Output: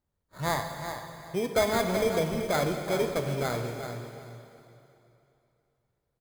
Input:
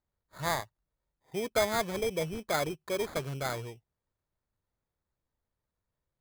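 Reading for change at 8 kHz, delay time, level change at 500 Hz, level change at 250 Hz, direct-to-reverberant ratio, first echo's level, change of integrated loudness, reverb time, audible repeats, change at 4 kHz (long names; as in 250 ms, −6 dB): +1.5 dB, 381 ms, +5.0 dB, +7.0 dB, 3.0 dB, −9.0 dB, +3.0 dB, 2.9 s, 2, +2.0 dB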